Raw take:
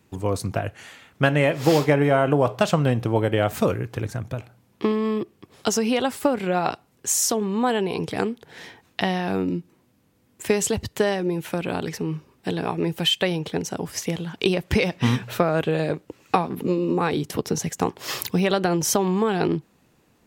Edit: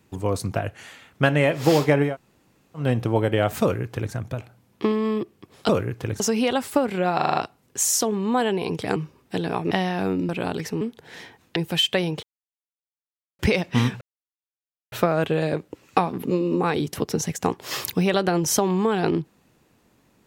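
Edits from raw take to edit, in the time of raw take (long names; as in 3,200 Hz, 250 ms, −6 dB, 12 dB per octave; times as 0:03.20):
0:02.09–0:02.82: fill with room tone, crossfade 0.16 s
0:03.62–0:04.13: duplicate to 0:05.69
0:06.65: stutter 0.04 s, 6 plays
0:08.25–0:09.00: swap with 0:12.09–0:12.84
0:09.58–0:11.57: remove
0:13.51–0:14.67: silence
0:15.29: splice in silence 0.91 s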